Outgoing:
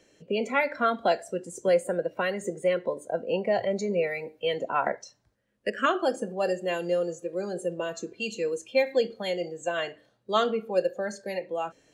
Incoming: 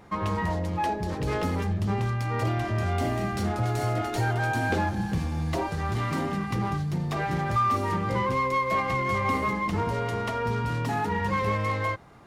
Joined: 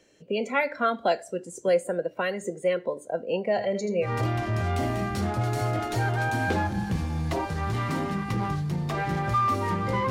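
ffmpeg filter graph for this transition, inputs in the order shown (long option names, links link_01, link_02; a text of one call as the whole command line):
ffmpeg -i cue0.wav -i cue1.wav -filter_complex "[0:a]asettb=1/sr,asplit=3[link_01][link_02][link_03];[link_01]atrim=end=3.484[link_04];[link_02]atrim=start=3.48:end=4.09,asetpts=PTS-STARTPTS,afade=type=in:duration=0.004:curve=qsin,afade=type=out:start_time=0.606:duration=0.004:curve=qsin,aecho=1:1:81:0.355,atrim=end_sample=26901[link_05];[link_03]atrim=start=4.086[link_06];[link_04][link_05]acrossfade=duration=0.004:curve1=hsin:curve2=qsin[link_07];[link_07][link_06]acrossfade=duration=0.004:curve1=qsin:curve2=hsin,apad=whole_dur=10.1,atrim=end=10.1,atrim=end=4.09,asetpts=PTS-STARTPTS[link_08];[1:a]atrim=start=2.23:end=8.32,asetpts=PTS-STARTPTS[link_09];[link_08][link_09]acrossfade=duration=0.08:curve1=tri:curve2=tri" out.wav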